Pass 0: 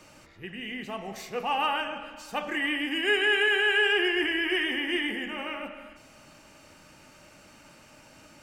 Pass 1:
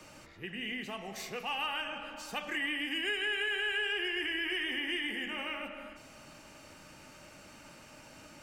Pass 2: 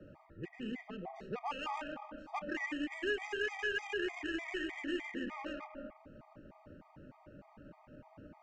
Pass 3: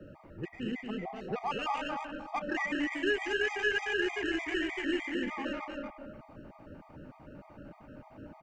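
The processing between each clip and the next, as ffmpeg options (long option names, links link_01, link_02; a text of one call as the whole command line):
ffmpeg -i in.wav -filter_complex "[0:a]acrossover=split=140|1700[link_01][link_02][link_03];[link_01]acompressor=threshold=-58dB:ratio=4[link_04];[link_02]acompressor=threshold=-41dB:ratio=4[link_05];[link_03]acompressor=threshold=-34dB:ratio=4[link_06];[link_04][link_05][link_06]amix=inputs=3:normalize=0" out.wav
ffmpeg -i in.wav -af "adynamicsmooth=sensitivity=1.5:basefreq=860,afftfilt=real='re*gt(sin(2*PI*3.3*pts/sr)*(1-2*mod(floor(b*sr/1024/630),2)),0)':imag='im*gt(sin(2*PI*3.3*pts/sr)*(1-2*mod(floor(b*sr/1024/630),2)),0)':win_size=1024:overlap=0.75,volume=4.5dB" out.wav
ffmpeg -i in.wav -af "aecho=1:1:233:0.562,volume=5dB" out.wav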